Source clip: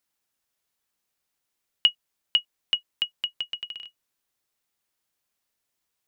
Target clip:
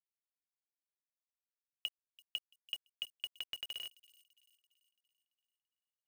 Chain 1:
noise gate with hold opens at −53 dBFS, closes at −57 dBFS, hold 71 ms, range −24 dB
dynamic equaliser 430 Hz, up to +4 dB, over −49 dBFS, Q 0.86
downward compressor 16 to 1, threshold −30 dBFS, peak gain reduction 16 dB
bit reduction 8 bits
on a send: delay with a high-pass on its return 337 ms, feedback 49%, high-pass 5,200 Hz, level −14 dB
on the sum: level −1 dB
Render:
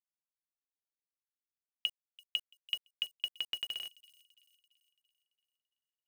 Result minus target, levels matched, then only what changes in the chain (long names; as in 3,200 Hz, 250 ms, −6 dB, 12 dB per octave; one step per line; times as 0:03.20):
downward compressor: peak gain reduction −6.5 dB
change: downward compressor 16 to 1, threshold −37 dBFS, peak gain reduction 22.5 dB